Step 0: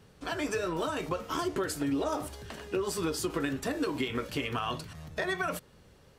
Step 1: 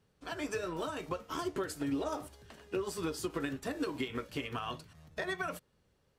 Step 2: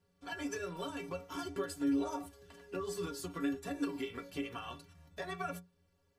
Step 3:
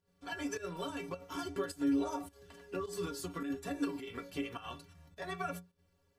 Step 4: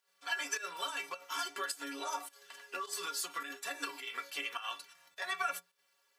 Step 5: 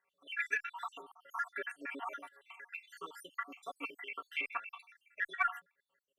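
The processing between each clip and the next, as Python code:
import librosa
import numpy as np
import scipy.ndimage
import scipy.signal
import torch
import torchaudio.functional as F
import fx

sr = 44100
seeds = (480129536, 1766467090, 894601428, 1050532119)

y1 = fx.upward_expand(x, sr, threshold_db=-50.0, expansion=1.5)
y1 = y1 * librosa.db_to_amplitude(-3.0)
y2 = fx.stiff_resonator(y1, sr, f0_hz=84.0, decay_s=0.32, stiffness=0.03)
y2 = y2 * librosa.db_to_amplitude(6.5)
y3 = fx.volume_shaper(y2, sr, bpm=105, per_beat=1, depth_db=-10, release_ms=70.0, shape='slow start')
y3 = y3 * librosa.db_to_amplitude(1.0)
y4 = scipy.signal.sosfilt(scipy.signal.butter(2, 1200.0, 'highpass', fs=sr, output='sos'), y3)
y4 = y4 * librosa.db_to_amplitude(8.5)
y5 = fx.spec_dropout(y4, sr, seeds[0], share_pct=65)
y5 = fx.high_shelf_res(y5, sr, hz=3300.0, db=-14.0, q=3.0)
y5 = fx.cheby_harmonics(y5, sr, harmonics=(4, 6), levels_db=(-34, -44), full_scale_db=-19.0)
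y5 = y5 * librosa.db_to_amplitude(1.0)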